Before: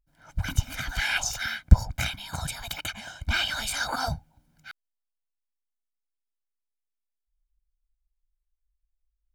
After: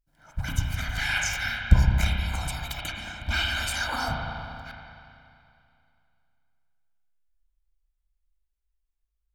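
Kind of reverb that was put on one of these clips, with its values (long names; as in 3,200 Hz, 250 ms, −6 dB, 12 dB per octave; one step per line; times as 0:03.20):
spring reverb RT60 2.6 s, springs 31/39 ms, chirp 55 ms, DRR −0.5 dB
level −2 dB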